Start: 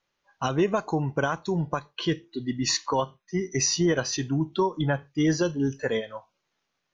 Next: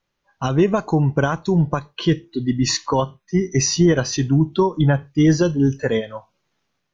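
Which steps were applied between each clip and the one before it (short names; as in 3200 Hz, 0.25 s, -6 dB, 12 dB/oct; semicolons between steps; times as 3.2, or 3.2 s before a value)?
low shelf 270 Hz +9.5 dB; AGC gain up to 4 dB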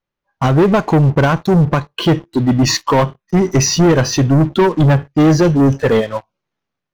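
high shelf 3300 Hz -8.5 dB; sample leveller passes 3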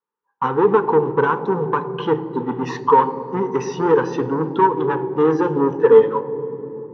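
double band-pass 640 Hz, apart 1 oct; reverb RT60 3.4 s, pre-delay 3 ms, DRR 12.5 dB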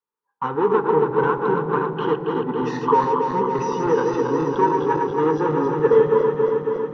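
regenerating reverse delay 0.138 s, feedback 84%, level -5 dB; gain -4.5 dB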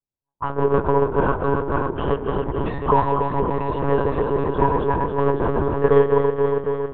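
monotone LPC vocoder at 8 kHz 140 Hz; low-pass opened by the level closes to 470 Hz, open at -16.5 dBFS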